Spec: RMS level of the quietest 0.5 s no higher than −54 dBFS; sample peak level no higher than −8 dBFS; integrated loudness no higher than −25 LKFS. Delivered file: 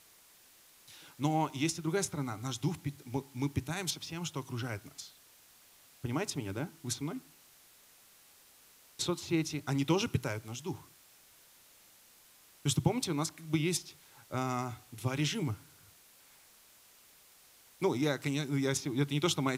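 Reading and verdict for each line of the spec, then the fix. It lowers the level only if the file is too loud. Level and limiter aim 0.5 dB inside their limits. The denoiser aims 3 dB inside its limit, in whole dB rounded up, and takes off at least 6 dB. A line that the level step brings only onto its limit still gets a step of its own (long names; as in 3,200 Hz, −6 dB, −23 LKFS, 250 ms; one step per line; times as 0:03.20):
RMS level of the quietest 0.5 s −61 dBFS: in spec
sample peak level −13.0 dBFS: in spec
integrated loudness −34.5 LKFS: in spec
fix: no processing needed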